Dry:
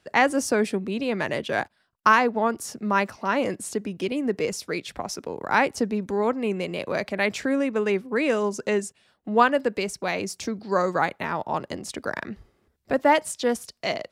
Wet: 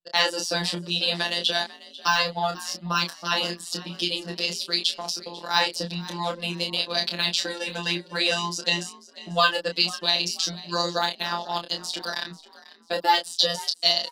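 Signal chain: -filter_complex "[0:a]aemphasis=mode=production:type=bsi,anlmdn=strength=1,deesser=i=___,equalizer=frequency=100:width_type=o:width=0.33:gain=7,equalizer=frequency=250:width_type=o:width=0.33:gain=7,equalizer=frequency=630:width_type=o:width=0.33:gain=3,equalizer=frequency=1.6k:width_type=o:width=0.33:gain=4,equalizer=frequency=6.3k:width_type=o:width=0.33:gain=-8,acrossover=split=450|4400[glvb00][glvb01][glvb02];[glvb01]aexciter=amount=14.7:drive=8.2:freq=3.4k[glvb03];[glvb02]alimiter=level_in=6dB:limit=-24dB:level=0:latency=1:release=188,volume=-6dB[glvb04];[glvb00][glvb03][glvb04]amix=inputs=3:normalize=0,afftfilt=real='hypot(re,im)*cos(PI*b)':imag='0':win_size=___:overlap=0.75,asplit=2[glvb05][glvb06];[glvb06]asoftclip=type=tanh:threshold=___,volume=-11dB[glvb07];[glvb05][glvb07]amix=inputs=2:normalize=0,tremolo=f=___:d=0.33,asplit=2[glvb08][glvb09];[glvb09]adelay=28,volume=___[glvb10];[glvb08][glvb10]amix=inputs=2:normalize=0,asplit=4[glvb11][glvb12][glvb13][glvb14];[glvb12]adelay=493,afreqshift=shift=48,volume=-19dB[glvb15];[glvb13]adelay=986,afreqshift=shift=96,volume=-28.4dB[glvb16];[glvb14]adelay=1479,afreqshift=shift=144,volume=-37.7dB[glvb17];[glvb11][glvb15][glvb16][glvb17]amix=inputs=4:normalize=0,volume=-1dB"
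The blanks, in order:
0.55, 1024, -9.5dB, 17, -5.5dB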